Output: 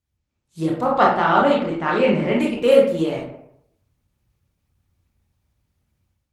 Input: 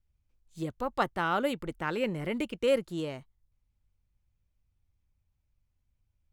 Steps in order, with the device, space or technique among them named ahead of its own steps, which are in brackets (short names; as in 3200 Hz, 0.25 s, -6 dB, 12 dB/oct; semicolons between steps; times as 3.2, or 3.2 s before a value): 0.89–2.36 LPF 6800 Hz 24 dB/oct; dynamic EQ 710 Hz, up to +4 dB, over -40 dBFS, Q 1.7; far-field microphone of a smart speaker (reverb RT60 0.70 s, pre-delay 20 ms, DRR -3 dB; HPF 85 Hz 12 dB/oct; AGC gain up to 10 dB; Opus 20 kbps 48000 Hz)